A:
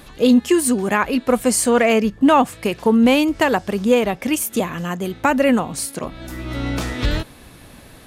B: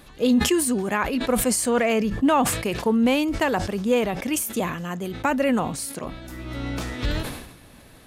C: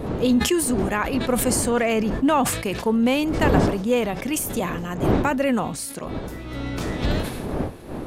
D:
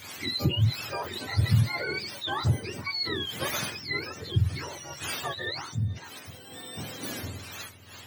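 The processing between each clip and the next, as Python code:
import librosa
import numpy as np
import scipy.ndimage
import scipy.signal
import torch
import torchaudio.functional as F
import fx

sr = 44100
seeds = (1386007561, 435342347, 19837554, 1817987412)

y1 = fx.sustainer(x, sr, db_per_s=59.0)
y1 = y1 * librosa.db_to_amplitude(-6.0)
y2 = fx.dmg_wind(y1, sr, seeds[0], corner_hz=390.0, level_db=-28.0)
y3 = fx.octave_mirror(y2, sr, pivot_hz=1000.0)
y3 = y3 * librosa.db_to_amplitude(-8.0)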